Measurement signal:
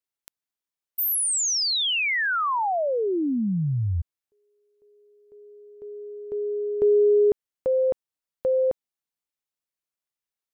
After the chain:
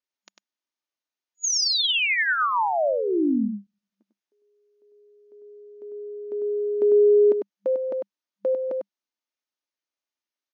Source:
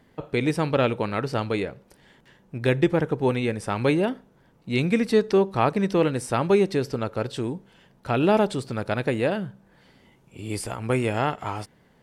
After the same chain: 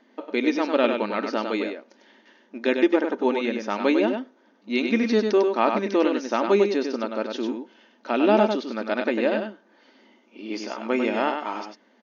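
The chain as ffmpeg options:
ffmpeg -i in.wav -af "aecho=1:1:3.3:0.32,aecho=1:1:99:0.531,afftfilt=real='re*between(b*sr/4096,200,6800)':imag='im*between(b*sr/4096,200,6800)':win_size=4096:overlap=0.75" out.wav

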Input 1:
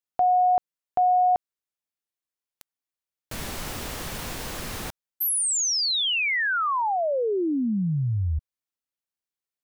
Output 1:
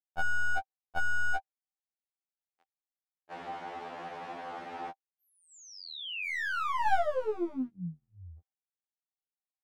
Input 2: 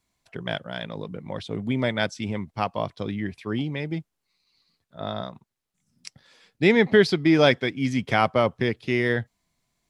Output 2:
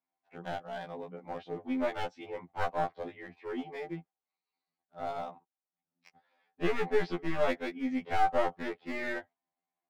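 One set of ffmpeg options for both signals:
ffmpeg -i in.wav -af "lowpass=1900,agate=range=-8dB:threshold=-51dB:ratio=16:release=81:detection=rms,highpass=300,equalizer=frequency=780:width=6.5:gain=13.5,acompressor=threshold=-15dB:ratio=8:attack=4.9:release=31:knee=1:detection=rms,aeval=exprs='clip(val(0),-1,0.0422)':channel_layout=same,afftfilt=real='re*2*eq(mod(b,4),0)':imag='im*2*eq(mod(b,4),0)':win_size=2048:overlap=0.75,volume=-3.5dB" out.wav

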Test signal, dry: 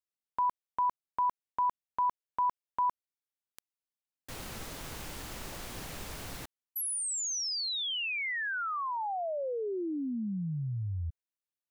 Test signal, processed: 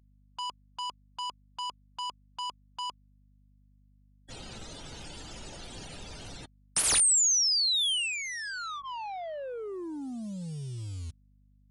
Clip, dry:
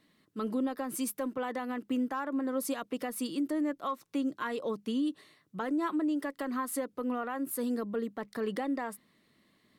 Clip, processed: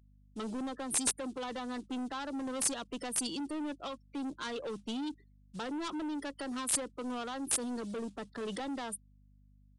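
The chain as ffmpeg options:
ffmpeg -i in.wav -filter_complex "[0:a]afftfilt=real='re*gte(hypot(re,im),0.00398)':imag='im*gte(hypot(re,im),0.00398)':win_size=1024:overlap=0.75,bandreject=frequency=1100:width=12,afftdn=noise_reduction=22:noise_floor=-47,acrossover=split=200|500|4000[link_01][link_02][link_03][link_04];[link_01]acrusher=bits=4:mode=log:mix=0:aa=0.000001[link_05];[link_05][link_02][link_03][link_04]amix=inputs=4:normalize=0,aeval=exprs='val(0)+0.000891*(sin(2*PI*50*n/s)+sin(2*PI*2*50*n/s)/2+sin(2*PI*3*50*n/s)/3+sin(2*PI*4*50*n/s)/4+sin(2*PI*5*50*n/s)/5)':channel_layout=same,asoftclip=type=tanh:threshold=-34.5dB,aexciter=amount=4.7:drive=2.7:freq=2900,aeval=exprs='(mod(8.41*val(0)+1,2)-1)/8.41':channel_layout=same,aresample=22050,aresample=44100" out.wav

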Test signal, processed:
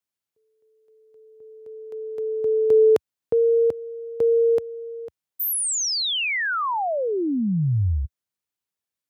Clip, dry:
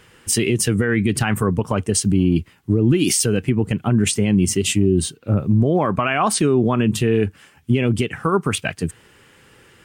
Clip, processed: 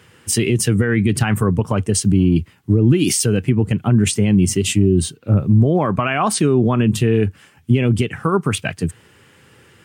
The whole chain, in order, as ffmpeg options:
ffmpeg -i in.wav -af "highpass=frequency=79:width=0.5412,highpass=frequency=79:width=1.3066,lowshelf=frequency=120:gain=8.5" out.wav

